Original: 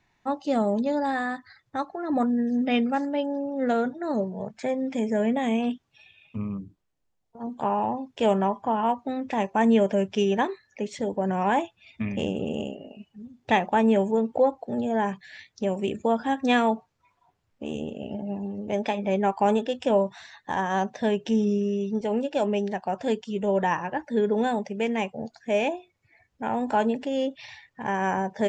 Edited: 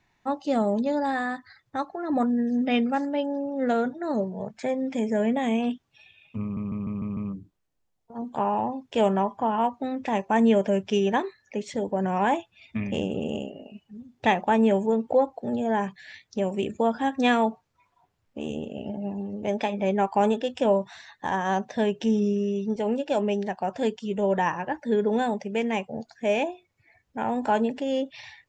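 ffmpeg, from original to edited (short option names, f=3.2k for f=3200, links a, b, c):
-filter_complex "[0:a]asplit=6[a][b][c][d][e][f];[a]atrim=end=6.572[g];[b]atrim=start=6.418:end=6.572[h];[c]atrim=start=6.418:end=6.572[i];[d]atrim=start=6.418:end=6.572[j];[e]atrim=start=6.418:end=6.572[k];[f]atrim=start=6.418[l];[g][h]acrossfade=d=0.004:c1=hsin:c2=hsin[m];[m][i]acrossfade=d=0.004:c1=hsin:c2=hsin[n];[n][j]acrossfade=d=0.004:c1=hsin:c2=hsin[o];[o][k]acrossfade=d=0.004:c1=hsin:c2=hsin[p];[p][l]acrossfade=d=0.004:c1=hsin:c2=hsin"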